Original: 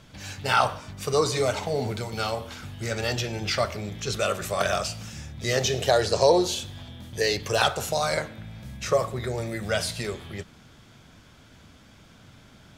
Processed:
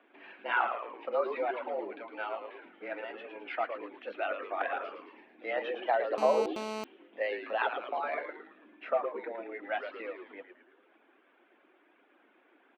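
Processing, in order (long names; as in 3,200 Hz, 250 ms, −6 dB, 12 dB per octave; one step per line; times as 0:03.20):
reverb reduction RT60 0.97 s
0:02.93–0:03.50: downward compressor, threshold −30 dBFS, peak gain reduction 6.5 dB
echo with shifted repeats 110 ms, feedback 51%, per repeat −130 Hz, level −7.5 dB
single-sideband voice off tune +91 Hz 220–2,600 Hz
0:06.18–0:06.84: phone interference −30 dBFS
level −7 dB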